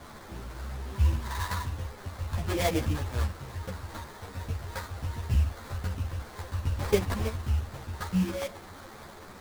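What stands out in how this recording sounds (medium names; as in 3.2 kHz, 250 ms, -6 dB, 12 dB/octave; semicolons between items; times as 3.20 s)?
a quantiser's noise floor 8-bit, dither triangular; phasing stages 2, 1.2 Hz, lowest notch 280–1800 Hz; aliases and images of a low sample rate 2.8 kHz, jitter 20%; a shimmering, thickened sound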